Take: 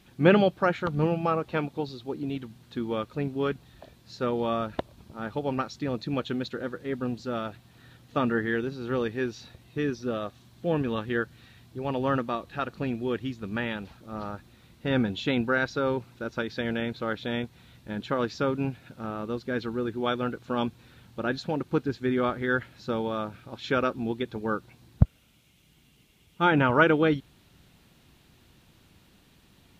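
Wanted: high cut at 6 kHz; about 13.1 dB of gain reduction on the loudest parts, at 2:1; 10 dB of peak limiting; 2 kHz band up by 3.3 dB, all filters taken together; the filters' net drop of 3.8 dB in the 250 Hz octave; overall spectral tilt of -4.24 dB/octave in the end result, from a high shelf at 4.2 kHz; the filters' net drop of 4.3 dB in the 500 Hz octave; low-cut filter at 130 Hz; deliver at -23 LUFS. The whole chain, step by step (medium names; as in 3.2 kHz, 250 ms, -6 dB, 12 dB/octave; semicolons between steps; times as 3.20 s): high-pass 130 Hz; low-pass 6 kHz; peaking EQ 250 Hz -3 dB; peaking EQ 500 Hz -4.5 dB; peaking EQ 2 kHz +6.5 dB; treble shelf 4.2 kHz -7 dB; compression 2:1, threshold -39 dBFS; trim +18 dB; peak limiter -10 dBFS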